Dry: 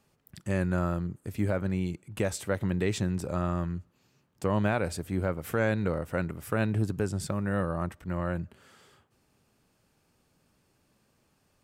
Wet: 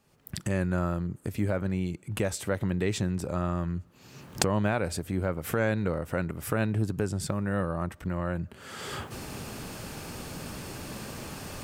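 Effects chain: recorder AGC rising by 43 dB/s

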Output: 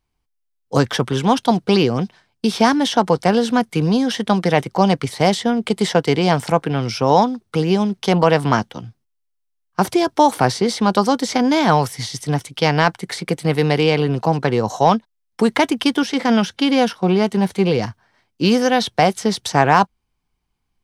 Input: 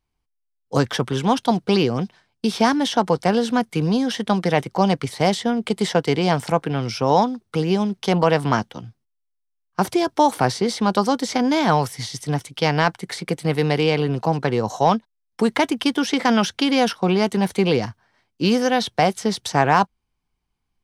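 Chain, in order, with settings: 16.03–17.79 s: harmonic-percussive split percussive -7 dB; trim +3 dB

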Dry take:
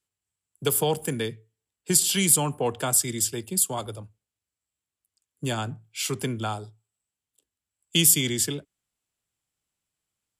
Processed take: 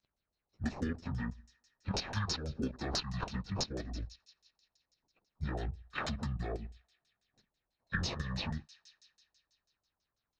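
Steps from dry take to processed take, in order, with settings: frequency-domain pitch shifter -11 st; peaking EQ 1.8 kHz +5 dB 2.2 oct; in parallel at -4 dB: decimation with a swept rate 21×, swing 60% 0.28 Hz; on the sum: level held to a coarse grid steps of 10 dB; bass shelf 340 Hz +7.5 dB; feedback echo behind a high-pass 87 ms, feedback 78%, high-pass 3.3 kHz, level -23.5 dB; LFO low-pass saw down 6.1 Hz 600–7900 Hz; compression 5:1, threshold -32 dBFS, peak gain reduction 18 dB; trim -2.5 dB

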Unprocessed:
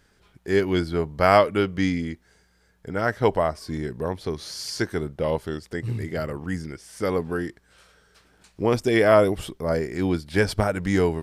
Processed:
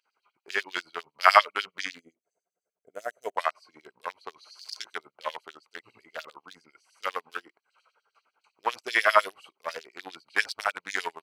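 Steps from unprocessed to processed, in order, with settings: local Wiener filter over 25 samples; time-frequency box 1.99–3.37 s, 740–6000 Hz -18 dB; LFO high-pass sine 10 Hz 990–4900 Hz; trim +1 dB

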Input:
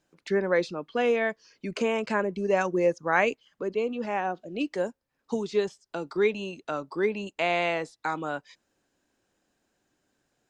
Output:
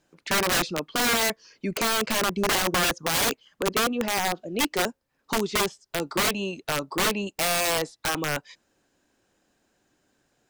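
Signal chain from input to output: integer overflow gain 23 dB; trim +5 dB

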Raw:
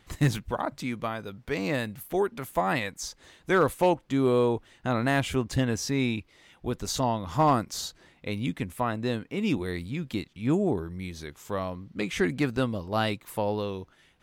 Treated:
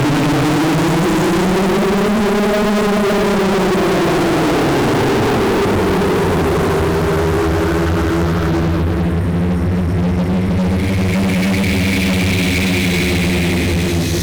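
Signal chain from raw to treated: Paulstretch 22×, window 0.10 s, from 10.49 s; fuzz box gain 45 dB, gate -53 dBFS

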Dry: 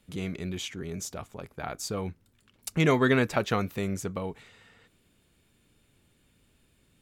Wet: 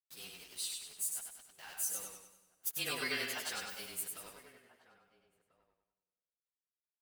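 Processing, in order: frequency axis rescaled in octaves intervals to 109%; differentiator; small samples zeroed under -55.5 dBFS; echo from a far wall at 230 m, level -18 dB; on a send at -19.5 dB: reverberation RT60 1.9 s, pre-delay 62 ms; on the sum: modulated delay 98 ms, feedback 46%, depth 63 cents, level -3.5 dB; trim +4 dB

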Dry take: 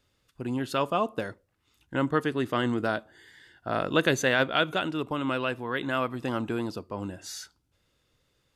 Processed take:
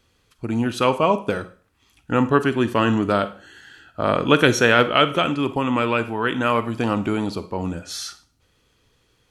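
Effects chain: Schroeder reverb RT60 0.37 s, combs from 32 ms, DRR 12.5 dB; speed mistake 48 kHz file played as 44.1 kHz; trim +8 dB

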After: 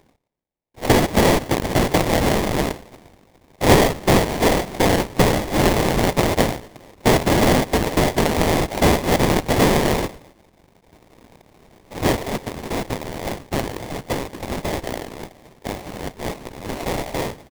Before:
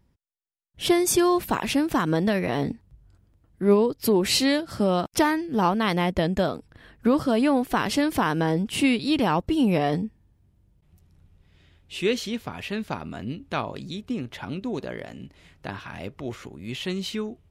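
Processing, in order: feedback delay 117 ms, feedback 37%, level -18.5 dB; frequency inversion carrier 3.7 kHz; sample-rate reducer 1.4 kHz, jitter 20%; trim +5 dB

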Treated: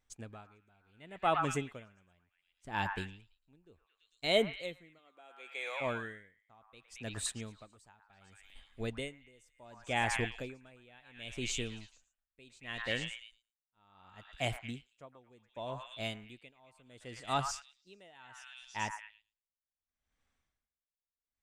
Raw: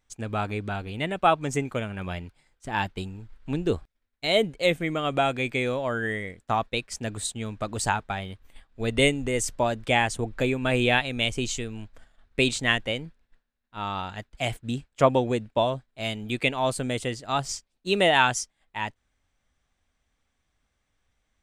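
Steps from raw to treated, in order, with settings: 4.98–5.80 s: high-pass 210 Hz -> 760 Hz 24 dB/octave; on a send: repeats whose band climbs or falls 112 ms, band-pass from 1.3 kHz, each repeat 0.7 oct, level -3 dB; on the sum: logarithmic tremolo 0.69 Hz, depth 32 dB; trim -6 dB

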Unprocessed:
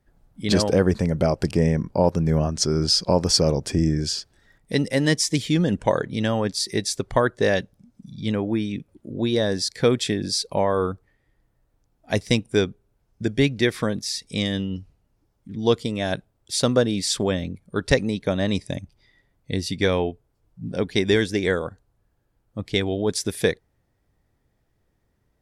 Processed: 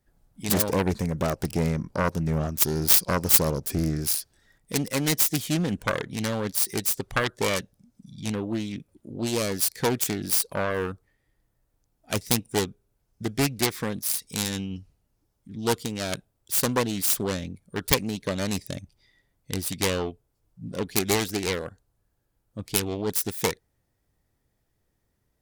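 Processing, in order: self-modulated delay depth 0.62 ms; treble shelf 5.1 kHz +10 dB; trim -5 dB

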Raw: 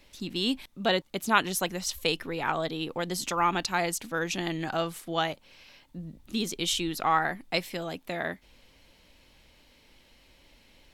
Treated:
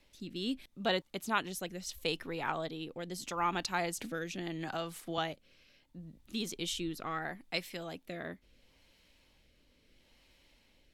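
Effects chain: rotary cabinet horn 0.75 Hz; 3.98–5.18 s: three bands compressed up and down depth 70%; trim -5.5 dB

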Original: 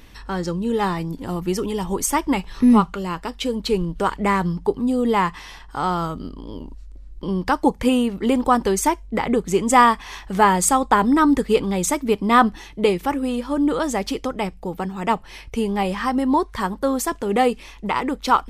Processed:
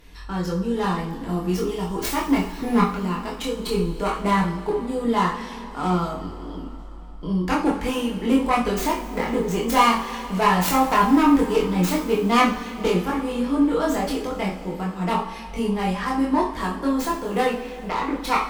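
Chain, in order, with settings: tracing distortion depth 0.29 ms; 17.46–18.14 s: low-pass 4.2 kHz; one-sided clip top -14 dBFS; chorus voices 6, 0.31 Hz, delay 24 ms, depth 2.5 ms; two-slope reverb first 0.42 s, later 4 s, from -18 dB, DRR -1 dB; trim -2 dB

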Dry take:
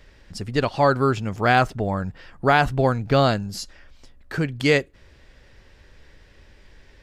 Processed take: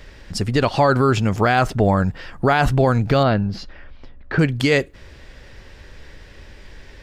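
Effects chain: 3.23–4.39 s: distance through air 300 m; loudness maximiser +14.5 dB; trim -5.5 dB

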